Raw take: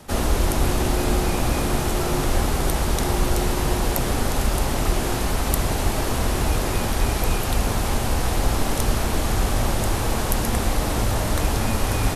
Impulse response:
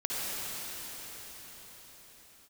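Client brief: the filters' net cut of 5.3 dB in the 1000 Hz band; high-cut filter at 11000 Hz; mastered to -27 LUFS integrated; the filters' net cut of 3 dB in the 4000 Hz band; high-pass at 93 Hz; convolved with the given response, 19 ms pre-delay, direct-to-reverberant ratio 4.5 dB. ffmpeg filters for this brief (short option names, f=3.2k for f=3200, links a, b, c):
-filter_complex "[0:a]highpass=93,lowpass=11k,equalizer=f=1k:t=o:g=-7,equalizer=f=4k:t=o:g=-3.5,asplit=2[a][b];[1:a]atrim=start_sample=2205,adelay=19[c];[b][c]afir=irnorm=-1:irlink=0,volume=-13dB[d];[a][d]amix=inputs=2:normalize=0,volume=-2dB"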